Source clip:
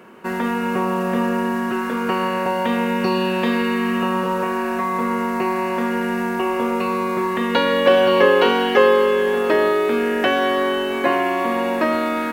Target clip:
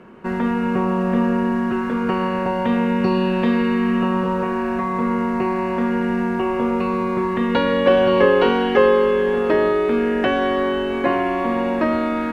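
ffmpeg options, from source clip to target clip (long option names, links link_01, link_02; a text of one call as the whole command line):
ffmpeg -i in.wav -af "aemphasis=mode=reproduction:type=bsi,volume=-2dB" out.wav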